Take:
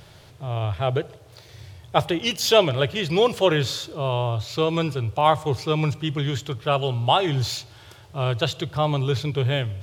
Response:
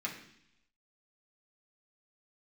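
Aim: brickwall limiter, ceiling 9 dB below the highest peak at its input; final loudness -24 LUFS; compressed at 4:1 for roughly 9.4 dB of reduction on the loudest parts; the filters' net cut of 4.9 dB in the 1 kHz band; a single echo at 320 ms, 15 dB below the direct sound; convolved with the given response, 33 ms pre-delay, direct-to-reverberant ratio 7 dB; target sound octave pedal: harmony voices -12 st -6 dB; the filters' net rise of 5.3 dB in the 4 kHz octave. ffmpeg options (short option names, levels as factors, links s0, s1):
-filter_complex "[0:a]equalizer=f=1000:t=o:g=-7,equalizer=f=4000:t=o:g=7.5,acompressor=threshold=0.0708:ratio=4,alimiter=limit=0.106:level=0:latency=1,aecho=1:1:320:0.178,asplit=2[s0][s1];[1:a]atrim=start_sample=2205,adelay=33[s2];[s1][s2]afir=irnorm=-1:irlink=0,volume=0.316[s3];[s0][s3]amix=inputs=2:normalize=0,asplit=2[s4][s5];[s5]asetrate=22050,aresample=44100,atempo=2,volume=0.501[s6];[s4][s6]amix=inputs=2:normalize=0,volume=1.68"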